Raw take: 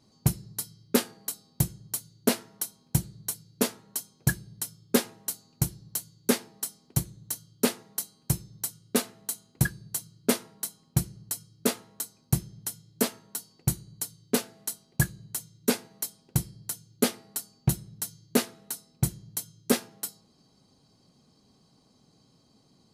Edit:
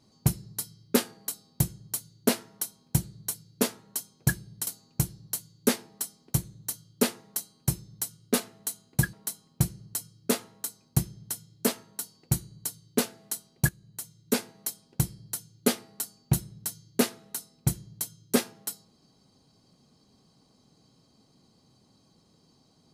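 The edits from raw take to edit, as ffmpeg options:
-filter_complex "[0:a]asplit=4[a][b][c][d];[a]atrim=end=4.672[e];[b]atrim=start=5.288:end=9.752[f];[c]atrim=start=10.488:end=15.05,asetpts=PTS-STARTPTS,afade=t=out:st=4.558:d=0.004:c=hsin:silence=0.223872[g];[d]atrim=start=15.05,asetpts=PTS-STARTPTS,afade=t=in:d=1.01:c=qsin:silence=0.223872[h];[e][f]acrossfade=d=0.004:c1=hsin:c2=hsin[i];[g][h]concat=n=2:v=0:a=1[j];[i][j]acrossfade=d=0.004:c1=hsin:c2=hsin"

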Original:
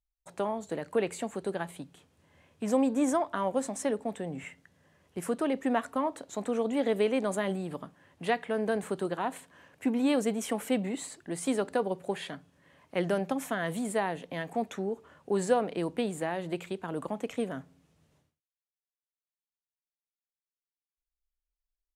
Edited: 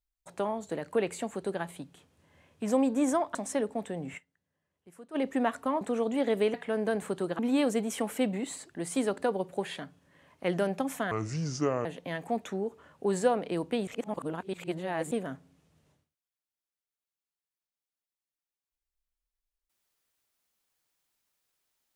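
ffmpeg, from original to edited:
-filter_complex "[0:a]asplit=11[a][b][c][d][e][f][g][h][i][j][k];[a]atrim=end=3.352[l];[b]atrim=start=3.648:end=4.6,asetpts=PTS-STARTPTS,afade=t=out:st=0.822:d=0.13:c=exp:silence=0.11885[m];[c]atrim=start=4.6:end=5.33,asetpts=PTS-STARTPTS,volume=-18.5dB[n];[d]atrim=start=5.33:end=6.112,asetpts=PTS-STARTPTS,afade=t=in:d=0.13:c=exp:silence=0.11885[o];[e]atrim=start=6.398:end=7.132[p];[f]atrim=start=8.348:end=9.202[q];[g]atrim=start=9.898:end=13.624[r];[h]atrim=start=13.62:end=14.11,asetpts=PTS-STARTPTS,asetrate=29106,aresample=44100[s];[i]atrim=start=14.106:end=16.132[t];[j]atrim=start=16.128:end=17.372,asetpts=PTS-STARTPTS,areverse[u];[k]atrim=start=17.368[v];[m][n][o]concat=n=3:v=0:a=1[w];[l][w]acrossfade=d=0.004:c1=hsin:c2=hsin[x];[x][p]acrossfade=d=0.004:c1=hsin:c2=hsin[y];[y][q]acrossfade=d=0.004:c1=hsin:c2=hsin[z];[z][r]acrossfade=d=0.004:c1=hsin:c2=hsin[aa];[aa][s]acrossfade=d=0.004:c1=hsin:c2=hsin[ab];[ab][t]acrossfade=d=0.004:c1=hsin:c2=hsin[ac];[ac][u]acrossfade=d=0.004:c1=hsin:c2=hsin[ad];[ad][v]acrossfade=d=0.004:c1=hsin:c2=hsin"

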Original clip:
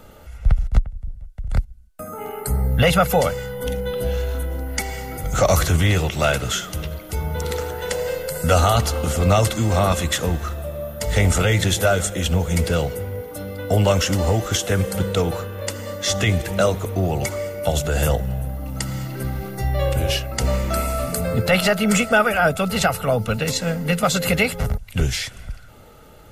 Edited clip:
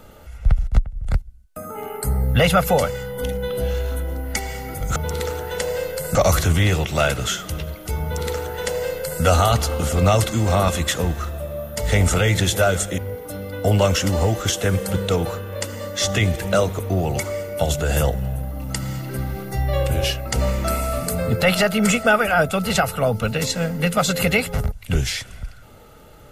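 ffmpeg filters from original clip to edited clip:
-filter_complex "[0:a]asplit=5[a][b][c][d][e];[a]atrim=end=0.972[f];[b]atrim=start=1.398:end=5.392[g];[c]atrim=start=7.268:end=8.462[h];[d]atrim=start=5.388:end=12.222[i];[e]atrim=start=13.038[j];[f][g]acrossfade=d=0.004:c1=hsin:c2=hsin[k];[k][h]acrossfade=d=0.004:c1=hsin:c2=hsin[l];[l][i]acrossfade=d=0.004:c1=hsin:c2=hsin[m];[m][j]acrossfade=d=0.004:c1=hsin:c2=hsin"

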